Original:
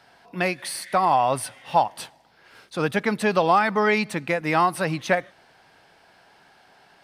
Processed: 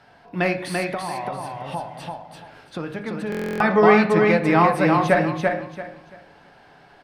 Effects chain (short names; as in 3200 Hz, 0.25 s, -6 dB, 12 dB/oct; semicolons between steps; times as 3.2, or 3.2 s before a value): low shelf 350 Hz +5 dB; reverb RT60 0.50 s, pre-delay 7 ms, DRR 5.5 dB; 0.88–3.49 compressor 6:1, threshold -29 dBFS, peak gain reduction 16 dB; high shelf 4500 Hz -10 dB; feedback echo 0.339 s, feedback 25%, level -3.5 dB; stuck buffer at 3.3, samples 1024, times 12; gain +1.5 dB